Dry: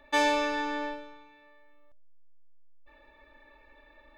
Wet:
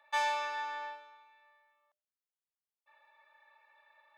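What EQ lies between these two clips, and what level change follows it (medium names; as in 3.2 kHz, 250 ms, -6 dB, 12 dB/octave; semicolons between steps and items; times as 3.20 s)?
ladder high-pass 700 Hz, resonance 35%; 0.0 dB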